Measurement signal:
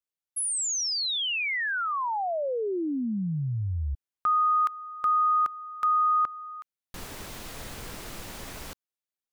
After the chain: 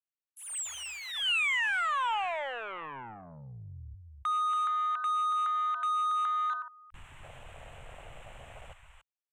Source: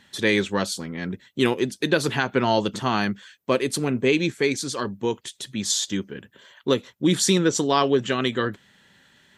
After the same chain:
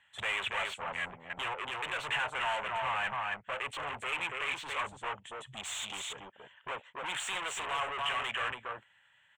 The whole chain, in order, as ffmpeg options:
-filter_complex "[0:a]aresample=32000,aresample=44100,acrossover=split=270|3200[s0][s1][s2];[s0]acompressor=threshold=0.00891:ratio=8:release=888:detection=peak[s3];[s1]alimiter=limit=0.133:level=0:latency=1:release=22[s4];[s3][s4][s2]amix=inputs=3:normalize=0,asoftclip=type=hard:threshold=0.0708,aecho=1:1:282:0.501,afwtdn=0.0158,asoftclip=type=tanh:threshold=0.0168,firequalizer=gain_entry='entry(130,0);entry(190,-12);entry(310,-16);entry(570,2);entry(890,10);entry(1600,10);entry(2900,13);entry(4800,-17);entry(7800,6);entry(11000,-11)':delay=0.05:min_phase=1,volume=0.75"

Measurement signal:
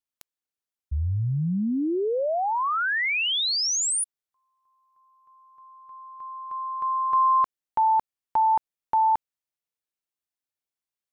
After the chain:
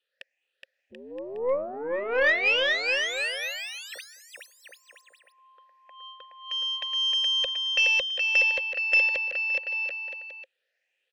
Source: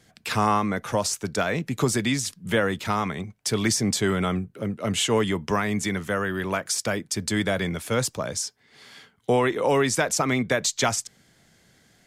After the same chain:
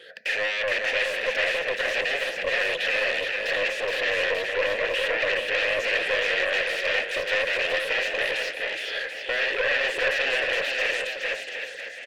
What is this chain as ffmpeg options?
-filter_complex "[0:a]afftfilt=real='re*pow(10,14/40*sin(2*PI*(0.64*log(max(b,1)*sr/1024/100)/log(2)-(1.8)*(pts-256)/sr)))':imag='im*pow(10,14/40*sin(2*PI*(0.64*log(max(b,1)*sr/1024/100)/log(2)-(1.8)*(pts-256)/sr)))':win_size=1024:overlap=0.75,areverse,acompressor=threshold=0.0355:ratio=6:attack=11:release=37:knee=1:detection=rms,areverse,aeval=exprs='0.178*sin(PI/2*7.94*val(0)/0.178)':c=same,asplit=3[s0][s1][s2];[s0]bandpass=f=530:t=q:w=8,volume=1[s3];[s1]bandpass=f=1840:t=q:w=8,volume=0.501[s4];[s2]bandpass=f=2480:t=q:w=8,volume=0.355[s5];[s3][s4][s5]amix=inputs=3:normalize=0,bass=f=250:g=-12,treble=f=4000:g=-11,aecho=1:1:420|735|971.2|1148|1281:0.631|0.398|0.251|0.158|0.1,aeval=exprs='0.168*(cos(1*acos(clip(val(0)/0.168,-1,1)))-cos(1*PI/2))+0.015*(cos(4*acos(clip(val(0)/0.168,-1,1)))-cos(4*PI/2))':c=same,tiltshelf=f=1200:g=-7.5,volume=1.78"

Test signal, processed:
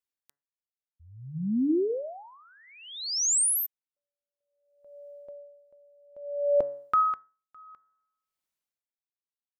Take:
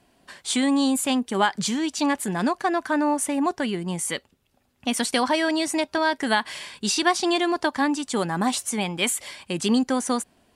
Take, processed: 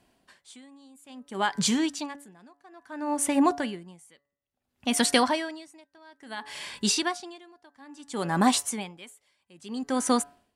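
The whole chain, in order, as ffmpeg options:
-af "dynaudnorm=f=250:g=5:m=2,bandreject=f=142.4:t=h:w=4,bandreject=f=284.8:t=h:w=4,bandreject=f=427.2:t=h:w=4,bandreject=f=569.6:t=h:w=4,bandreject=f=712:t=h:w=4,bandreject=f=854.4:t=h:w=4,bandreject=f=996.8:t=h:w=4,bandreject=f=1139.2:t=h:w=4,bandreject=f=1281.6:t=h:w=4,bandreject=f=1424:t=h:w=4,bandreject=f=1566.4:t=h:w=4,bandreject=f=1708.8:t=h:w=4,bandreject=f=1851.2:t=h:w=4,bandreject=f=1993.6:t=h:w=4,aeval=exprs='val(0)*pow(10,-33*(0.5-0.5*cos(2*PI*0.59*n/s))/20)':c=same,volume=0.668"

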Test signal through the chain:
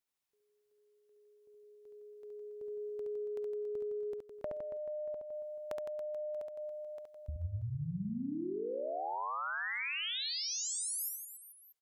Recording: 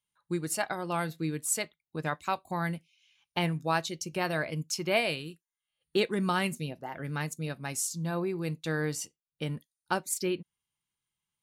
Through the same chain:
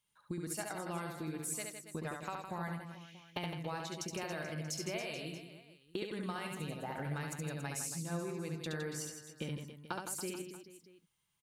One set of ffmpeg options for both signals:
-af "acompressor=threshold=0.00708:ratio=12,aecho=1:1:70|161|279.3|433.1|633:0.631|0.398|0.251|0.158|0.1,volume=1.68"

